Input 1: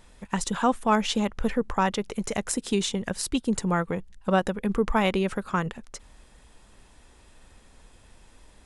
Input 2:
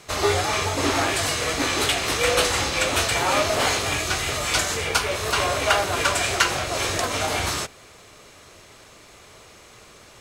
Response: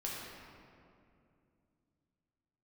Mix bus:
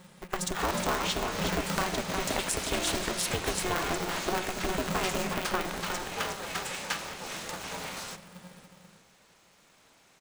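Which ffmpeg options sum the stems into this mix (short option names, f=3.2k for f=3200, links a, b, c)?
-filter_complex "[0:a]acompressor=threshold=-27dB:ratio=6,volume=-1dB,asplit=3[a][b][c];[b]volume=-9dB[d];[c]volume=-4dB[e];[1:a]adelay=500,volume=-14.5dB,asplit=2[f][g];[g]volume=-12dB[h];[2:a]atrim=start_sample=2205[i];[d][h]amix=inputs=2:normalize=0[j];[j][i]afir=irnorm=-1:irlink=0[k];[e]aecho=0:1:362:1[l];[a][f][k][l]amix=inputs=4:normalize=0,equalizer=f=82:t=o:w=1.9:g=-13.5,aeval=exprs='val(0)*sgn(sin(2*PI*180*n/s))':c=same"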